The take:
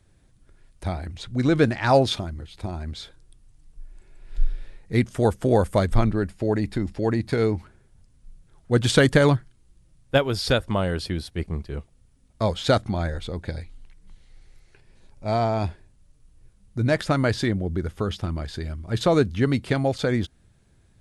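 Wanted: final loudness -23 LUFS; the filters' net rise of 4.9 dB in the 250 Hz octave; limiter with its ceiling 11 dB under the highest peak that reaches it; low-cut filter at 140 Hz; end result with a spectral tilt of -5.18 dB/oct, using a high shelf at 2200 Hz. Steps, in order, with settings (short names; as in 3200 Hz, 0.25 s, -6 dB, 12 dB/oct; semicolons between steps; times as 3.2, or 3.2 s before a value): HPF 140 Hz; bell 250 Hz +6.5 dB; high shelf 2200 Hz +6.5 dB; gain +1.5 dB; limiter -9 dBFS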